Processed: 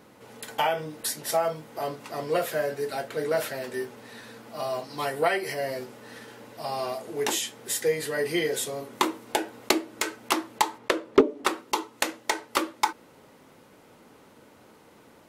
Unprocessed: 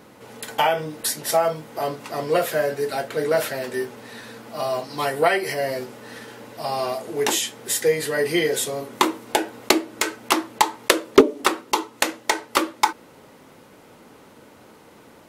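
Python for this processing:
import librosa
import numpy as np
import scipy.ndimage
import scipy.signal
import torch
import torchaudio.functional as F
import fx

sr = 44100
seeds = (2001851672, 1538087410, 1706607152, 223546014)

y = fx.lowpass(x, sr, hz=2200.0, slope=6, at=(10.77, 11.45), fade=0.02)
y = y * librosa.db_to_amplitude(-5.5)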